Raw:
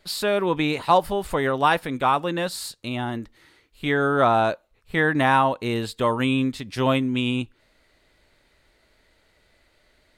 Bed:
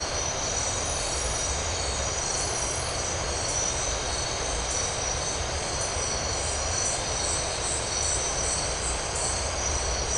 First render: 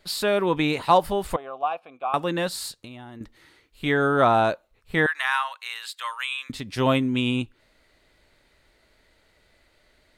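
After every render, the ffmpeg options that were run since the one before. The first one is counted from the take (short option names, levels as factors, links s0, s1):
-filter_complex "[0:a]asettb=1/sr,asplit=3[s0][s1][s2];[s0]atrim=end=1.364[s3];[s1]atrim=start=1.36:end=2.14,asetpts=PTS-STARTPTS,afade=t=in:d=0.004:c=qsin,afade=t=out:st=0.776:d=0.004:c=qsin,asplit=3[s4][s5][s6];[s4]bandpass=f=730:t=q:w=8,volume=1[s7];[s5]bandpass=f=1090:t=q:w=8,volume=0.501[s8];[s6]bandpass=f=2440:t=q:w=8,volume=0.355[s9];[s7][s8][s9]amix=inputs=3:normalize=0[s10];[s2]atrim=start=2.136[s11];[s3][s10]acrossfade=d=0.004:c1=hsin:c2=qsin[s12];[s12][s11]acrossfade=d=0.004:c1=qsin:c2=hsin,asettb=1/sr,asplit=3[s13][s14][s15];[s13]atrim=end=2.804[s16];[s14]atrim=start=2.8:end=3.21,asetpts=PTS-STARTPTS,afade=t=in:d=0.004:c=qsin,afade=t=out:st=0.406:d=0.004:c=qsin,acompressor=threshold=0.0158:ratio=16:attack=3.2:release=140:knee=1:detection=peak[s17];[s15]atrim=start=3.206[s18];[s16][s17]acrossfade=d=0.004:c1=hsin:c2=qsin[s19];[s19][s18]acrossfade=d=0.004:c1=qsin:c2=hsin,asettb=1/sr,asplit=3[s20][s21][s22];[s20]atrim=end=5.064[s23];[s21]atrim=start=5.06:end=6.5,asetpts=PTS-STARTPTS,afade=t=in:d=0.004:c=qsin,afade=t=out:st=1.436:d=0.004:c=qsin,highpass=f=1200:w=0.5412,highpass=f=1200:w=1.3066[s24];[s22]atrim=start=6.496[s25];[s23][s24]acrossfade=d=0.004:c1=hsin:c2=qsin[s26];[s26][s25]acrossfade=d=0.004:c1=qsin:c2=hsin"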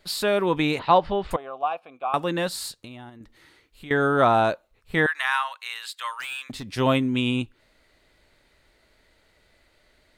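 -filter_complex "[0:a]asettb=1/sr,asplit=3[s0][s1][s2];[s0]atrim=end=0.794[s3];[s1]atrim=start=0.79:end=1.31,asetpts=PTS-STARTPTS,afade=t=in:d=0.004:c=qsin,afade=t=out:st=0.516:d=0.004:c=qsin,lowpass=f=4200:w=0.5412,lowpass=f=4200:w=1.3066[s4];[s2]atrim=start=1.306[s5];[s3][s4]acrossfade=d=0.004:c1=hsin:c2=qsin[s6];[s6][s5]acrossfade=d=0.004:c1=qsin:c2=hsin,asettb=1/sr,asplit=3[s7][s8][s9];[s7]atrim=end=3.094[s10];[s8]atrim=start=3.09:end=3.91,asetpts=PTS-STARTPTS,afade=t=in:d=0.004:c=qsin,afade=t=out:st=0.816:d=0.004:c=qsin,acompressor=threshold=0.00631:ratio=2.5:attack=3.2:release=140:knee=1:detection=peak[s11];[s9]atrim=start=3.906[s12];[s10][s11]acrossfade=d=0.004:c1=hsin:c2=qsin[s13];[s13][s12]acrossfade=d=0.004:c1=qsin:c2=hsin,asettb=1/sr,asplit=3[s14][s15][s16];[s14]atrim=end=6.204[s17];[s15]atrim=start=6.2:end=6.7,asetpts=PTS-STARTPTS,afade=t=in:d=0.004:c=qsin,afade=t=out:st=0.496:d=0.004:c=qsin,asoftclip=type=hard:threshold=0.0355[s18];[s16]atrim=start=6.696[s19];[s17][s18]acrossfade=d=0.004:c1=hsin:c2=qsin[s20];[s20][s19]acrossfade=d=0.004:c1=qsin:c2=hsin"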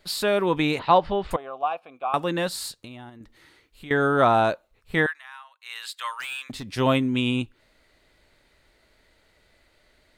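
-filter_complex "[0:a]asplit=3[s0][s1][s2];[s0]atrim=end=5.2,asetpts=PTS-STARTPTS,afade=t=out:st=5.01:d=0.19:silence=0.105925[s3];[s1]atrim=start=5.2:end=5.6,asetpts=PTS-STARTPTS,volume=0.106[s4];[s2]atrim=start=5.6,asetpts=PTS-STARTPTS,afade=t=in:d=0.19:silence=0.105925[s5];[s3][s4][s5]concat=n=3:v=0:a=1"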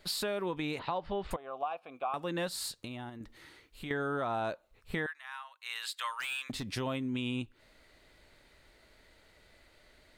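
-af "alimiter=limit=0.15:level=0:latency=1:release=319,acompressor=threshold=0.0141:ratio=2"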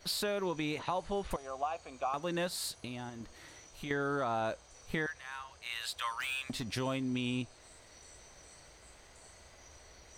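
-filter_complex "[1:a]volume=0.0316[s0];[0:a][s0]amix=inputs=2:normalize=0"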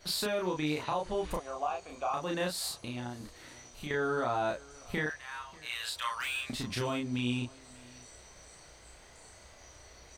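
-filter_complex "[0:a]asplit=2[s0][s1];[s1]adelay=33,volume=0.794[s2];[s0][s2]amix=inputs=2:normalize=0,aecho=1:1:590:0.0668"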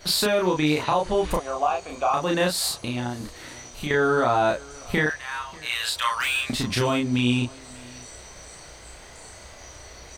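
-af "volume=3.35"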